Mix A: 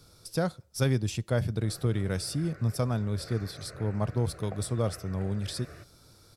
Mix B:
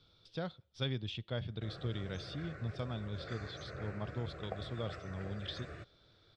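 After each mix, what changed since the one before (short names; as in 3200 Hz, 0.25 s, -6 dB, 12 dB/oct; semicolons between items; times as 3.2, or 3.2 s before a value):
speech: add ladder low-pass 3700 Hz, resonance 70%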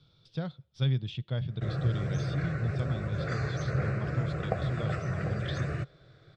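background +10.5 dB; master: add bell 140 Hz +13 dB 0.65 oct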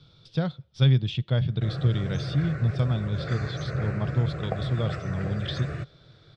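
speech +8.0 dB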